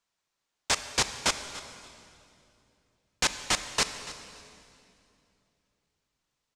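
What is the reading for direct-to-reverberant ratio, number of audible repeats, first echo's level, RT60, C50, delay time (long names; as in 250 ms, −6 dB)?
9.0 dB, 2, −17.0 dB, 2.7 s, 9.5 dB, 287 ms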